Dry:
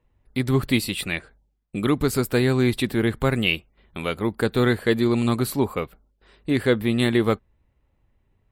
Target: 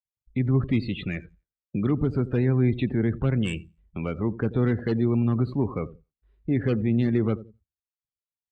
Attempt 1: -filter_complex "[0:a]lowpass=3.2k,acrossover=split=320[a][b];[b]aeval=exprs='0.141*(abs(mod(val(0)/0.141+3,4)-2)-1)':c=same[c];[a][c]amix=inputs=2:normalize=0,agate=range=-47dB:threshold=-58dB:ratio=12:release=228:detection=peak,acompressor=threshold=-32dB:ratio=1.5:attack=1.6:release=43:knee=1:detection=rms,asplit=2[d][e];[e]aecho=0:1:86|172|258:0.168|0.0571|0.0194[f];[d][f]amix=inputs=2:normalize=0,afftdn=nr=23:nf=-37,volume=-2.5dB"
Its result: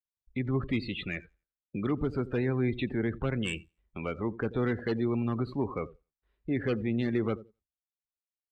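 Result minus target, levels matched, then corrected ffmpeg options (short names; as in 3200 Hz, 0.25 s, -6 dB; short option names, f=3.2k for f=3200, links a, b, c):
125 Hz band -3.0 dB
-filter_complex "[0:a]lowpass=3.2k,acrossover=split=320[a][b];[b]aeval=exprs='0.141*(abs(mod(val(0)/0.141+3,4)-2)-1)':c=same[c];[a][c]amix=inputs=2:normalize=0,agate=range=-47dB:threshold=-58dB:ratio=12:release=228:detection=peak,acompressor=threshold=-32dB:ratio=1.5:attack=1.6:release=43:knee=1:detection=rms,equalizer=f=130:t=o:w=2.6:g=9.5,asplit=2[d][e];[e]aecho=0:1:86|172|258:0.168|0.0571|0.0194[f];[d][f]amix=inputs=2:normalize=0,afftdn=nr=23:nf=-37,volume=-2.5dB"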